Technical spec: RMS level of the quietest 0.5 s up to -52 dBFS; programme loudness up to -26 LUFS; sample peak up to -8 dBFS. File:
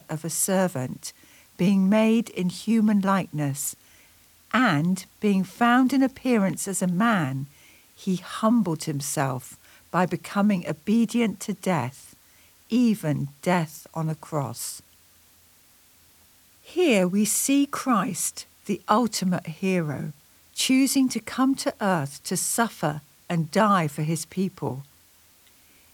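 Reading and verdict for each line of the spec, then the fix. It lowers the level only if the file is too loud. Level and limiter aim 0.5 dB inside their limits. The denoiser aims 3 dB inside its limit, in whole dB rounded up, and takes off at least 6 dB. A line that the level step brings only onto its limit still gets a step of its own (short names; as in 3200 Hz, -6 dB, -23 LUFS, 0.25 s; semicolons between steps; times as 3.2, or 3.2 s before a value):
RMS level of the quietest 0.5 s -57 dBFS: OK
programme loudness -24.5 LUFS: fail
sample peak -4.5 dBFS: fail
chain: gain -2 dB; limiter -8.5 dBFS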